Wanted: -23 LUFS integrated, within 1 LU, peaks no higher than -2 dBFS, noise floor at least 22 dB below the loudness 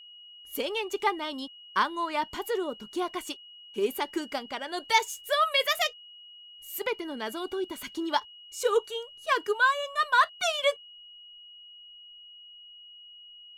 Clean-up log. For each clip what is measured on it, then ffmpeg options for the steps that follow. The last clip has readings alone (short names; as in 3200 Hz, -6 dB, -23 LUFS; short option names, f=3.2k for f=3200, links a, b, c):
steady tone 2900 Hz; tone level -47 dBFS; loudness -29.0 LUFS; peak -9.0 dBFS; loudness target -23.0 LUFS
-> -af "bandreject=f=2.9k:w=30"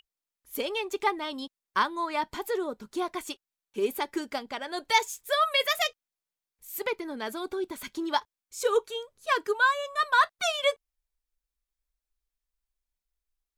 steady tone none; loudness -29.0 LUFS; peak -9.5 dBFS; loudness target -23.0 LUFS
-> -af "volume=6dB"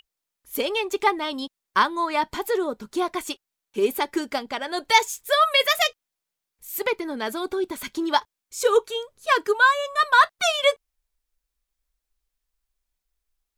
loudness -23.0 LUFS; peak -3.5 dBFS; noise floor -85 dBFS